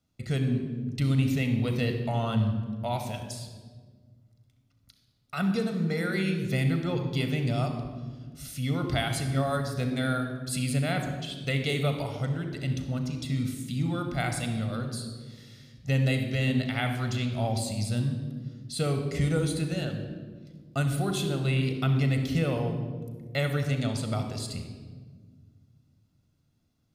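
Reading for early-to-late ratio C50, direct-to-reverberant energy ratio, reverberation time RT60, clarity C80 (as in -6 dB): 6.5 dB, 5.5 dB, 1.6 s, 8.0 dB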